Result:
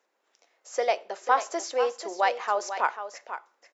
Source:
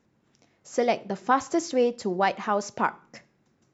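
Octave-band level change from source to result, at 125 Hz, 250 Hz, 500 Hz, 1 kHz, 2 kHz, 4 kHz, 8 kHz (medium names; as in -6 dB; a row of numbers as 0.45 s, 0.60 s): under -30 dB, -15.5 dB, -2.0 dB, +0.5 dB, +0.5 dB, +0.5 dB, no reading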